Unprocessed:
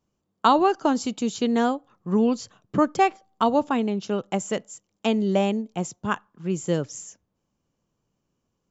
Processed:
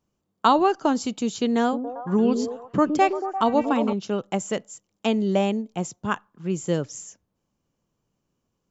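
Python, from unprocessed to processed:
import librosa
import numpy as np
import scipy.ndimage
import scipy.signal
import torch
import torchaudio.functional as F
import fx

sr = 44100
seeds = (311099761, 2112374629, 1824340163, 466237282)

y = fx.echo_stepped(x, sr, ms=115, hz=310.0, octaves=0.7, feedback_pct=70, wet_db=-3.5, at=(1.61, 3.93))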